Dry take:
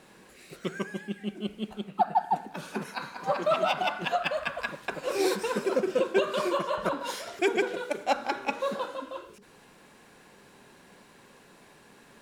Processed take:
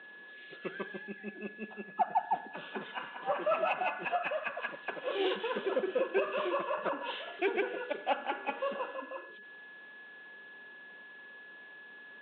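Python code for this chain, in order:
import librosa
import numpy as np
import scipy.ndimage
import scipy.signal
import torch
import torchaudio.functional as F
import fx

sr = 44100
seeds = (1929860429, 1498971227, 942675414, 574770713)

p1 = fx.freq_compress(x, sr, knee_hz=2500.0, ratio=4.0)
p2 = 10.0 ** (-23.0 / 20.0) * np.tanh(p1 / 10.0 ** (-23.0 / 20.0))
p3 = p1 + (p2 * librosa.db_to_amplitude(-9.0))
p4 = p3 + 10.0 ** (-42.0 / 20.0) * np.sin(2.0 * np.pi * 1700.0 * np.arange(len(p3)) / sr)
p5 = fx.bandpass_edges(p4, sr, low_hz=280.0, high_hz=3200.0)
y = p5 * librosa.db_to_amplitude(-6.5)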